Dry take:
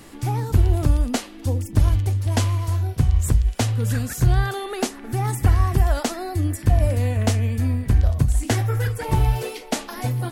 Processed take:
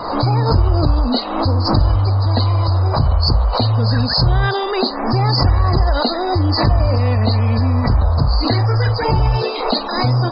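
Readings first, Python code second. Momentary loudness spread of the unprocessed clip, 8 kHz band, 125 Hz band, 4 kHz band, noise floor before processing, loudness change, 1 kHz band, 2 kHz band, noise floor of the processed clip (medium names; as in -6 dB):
7 LU, under -40 dB, +5.0 dB, +14.0 dB, -40 dBFS, +5.5 dB, +10.5 dB, +5.5 dB, -23 dBFS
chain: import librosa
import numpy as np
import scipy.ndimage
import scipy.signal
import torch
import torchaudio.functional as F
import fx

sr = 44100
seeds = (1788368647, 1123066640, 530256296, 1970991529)

p1 = fx.freq_compress(x, sr, knee_hz=3700.0, ratio=4.0)
p2 = fx.over_compress(p1, sr, threshold_db=-23.0, ratio=-1.0)
p3 = p1 + (p2 * librosa.db_to_amplitude(1.0))
p4 = fx.spec_topn(p3, sr, count=64)
p5 = fx.dmg_noise_band(p4, sr, seeds[0], low_hz=460.0, high_hz=1200.0, level_db=-30.0)
y = fx.pre_swell(p5, sr, db_per_s=58.0)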